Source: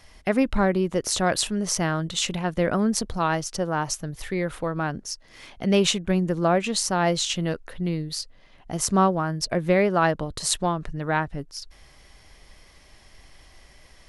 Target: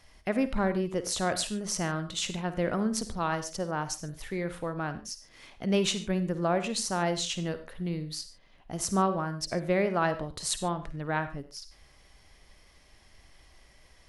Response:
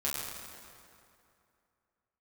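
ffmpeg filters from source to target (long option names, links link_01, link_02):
-filter_complex "[0:a]asplit=2[link_01][link_02];[1:a]atrim=start_sample=2205,atrim=end_sample=4410,adelay=52[link_03];[link_02][link_03]afir=irnorm=-1:irlink=0,volume=-14.5dB[link_04];[link_01][link_04]amix=inputs=2:normalize=0,volume=-6.5dB"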